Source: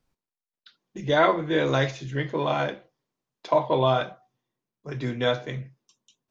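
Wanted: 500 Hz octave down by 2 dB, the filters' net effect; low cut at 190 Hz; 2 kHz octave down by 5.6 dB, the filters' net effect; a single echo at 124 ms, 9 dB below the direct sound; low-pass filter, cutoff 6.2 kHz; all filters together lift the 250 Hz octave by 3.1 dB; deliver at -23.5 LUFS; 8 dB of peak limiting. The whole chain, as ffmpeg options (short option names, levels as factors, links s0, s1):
-af "highpass=190,lowpass=6200,equalizer=f=250:t=o:g=7,equalizer=f=500:t=o:g=-3.5,equalizer=f=2000:t=o:g=-7.5,alimiter=limit=0.126:level=0:latency=1,aecho=1:1:124:0.355,volume=2"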